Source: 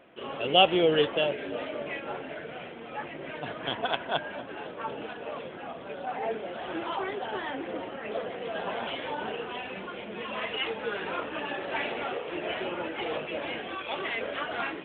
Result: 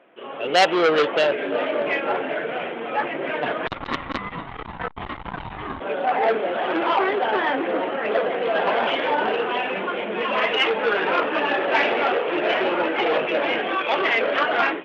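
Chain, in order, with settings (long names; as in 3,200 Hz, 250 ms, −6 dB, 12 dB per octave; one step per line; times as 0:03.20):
high-pass filter 160 Hz 12 dB per octave
bass and treble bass −7 dB, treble −14 dB
automatic gain control gain up to 12 dB
0:03.67–0:05.80: ring modulation 410 Hz
saturating transformer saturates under 2,300 Hz
level +2 dB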